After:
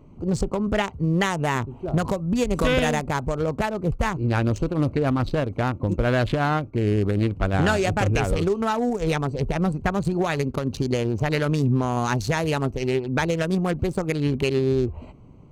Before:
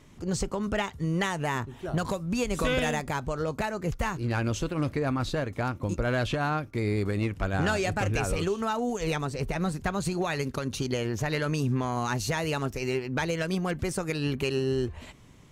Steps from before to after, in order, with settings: local Wiener filter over 25 samples; trim +6.5 dB

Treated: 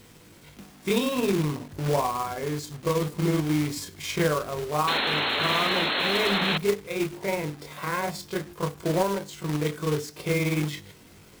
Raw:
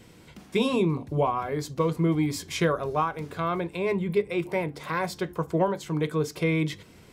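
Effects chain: granular stretch 1.6×, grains 108 ms; companded quantiser 4-bit; painted sound noise, 4.87–6.58 s, 200–4300 Hz -26 dBFS

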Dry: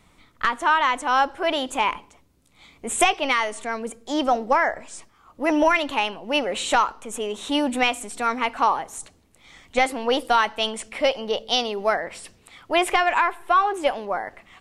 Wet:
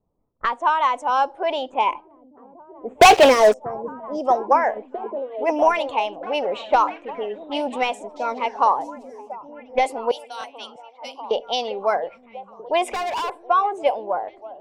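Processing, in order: level-controlled noise filter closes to 1.5 kHz, open at -15 dBFS; spectral noise reduction 11 dB; level-controlled noise filter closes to 480 Hz, open at -20.5 dBFS; 3.29–4.24 s: time-frequency box 740–4800 Hz -16 dB; 10.11–11.31 s: differentiator; harmonic-percussive split harmonic -4 dB; high-order bell 680 Hz +8 dB; 3.01–3.54 s: waveshaping leveller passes 5; 12.93–13.44 s: overload inside the chain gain 21 dB; repeats whose band climbs or falls 643 ms, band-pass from 160 Hz, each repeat 0.7 oct, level -7 dB; buffer glitch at 10.39 s, samples 1024, times 1; loudspeaker Doppler distortion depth 0.19 ms; trim -3 dB

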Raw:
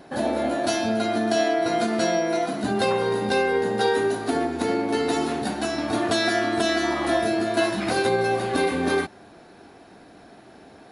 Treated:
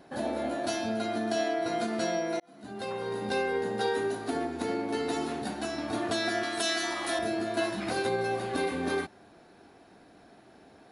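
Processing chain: 2.40–3.35 s: fade in; 6.43–7.19 s: tilt EQ +3 dB/octave; trim -7.5 dB

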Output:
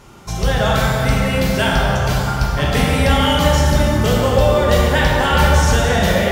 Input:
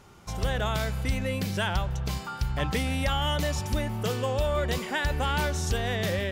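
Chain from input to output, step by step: reverb removal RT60 0.83 s; plate-style reverb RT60 3.7 s, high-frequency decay 0.5×, DRR -5.5 dB; trim +8 dB

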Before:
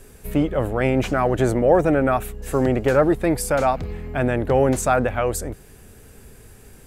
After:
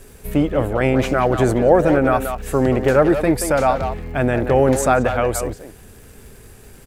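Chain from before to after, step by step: crackle 160 per s -42 dBFS; speakerphone echo 180 ms, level -7 dB; trim +2.5 dB

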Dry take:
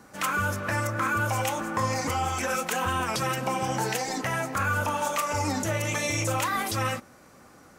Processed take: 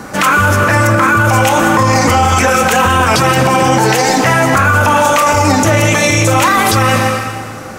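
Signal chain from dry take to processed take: treble shelf 6.1 kHz -4.5 dB; reverberation RT60 1.7 s, pre-delay 107 ms, DRR 8.5 dB; loudness maximiser +24.5 dB; trim -1 dB

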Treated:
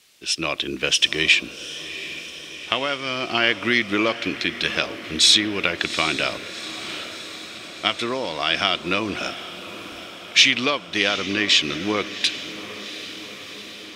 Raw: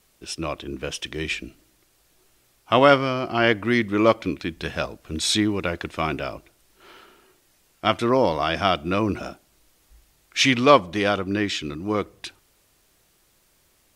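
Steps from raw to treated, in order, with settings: compression 10:1, threshold -23 dBFS, peak gain reduction 15 dB; frequency weighting D; level rider gain up to 6 dB; echo that smears into a reverb 770 ms, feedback 67%, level -13.5 dB

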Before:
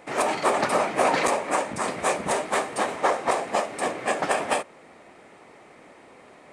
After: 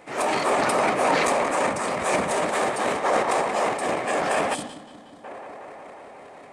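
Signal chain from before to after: tape echo 182 ms, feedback 89%, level -11.5 dB, low-pass 3.3 kHz; transient shaper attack -4 dB, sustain +11 dB; time-frequency box 4.54–5.24 s, 340–2900 Hz -13 dB

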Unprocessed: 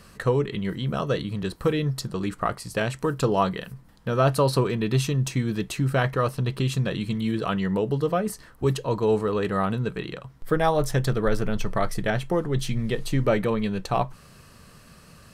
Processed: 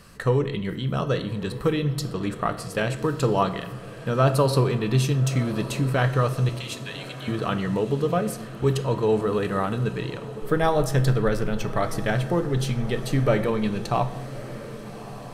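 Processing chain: 6.49–7.28 s: steep high-pass 1.7 kHz; on a send: echo that smears into a reverb 1243 ms, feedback 60%, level -15 dB; on the sum: simulated room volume 380 m³, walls mixed, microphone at 0.37 m

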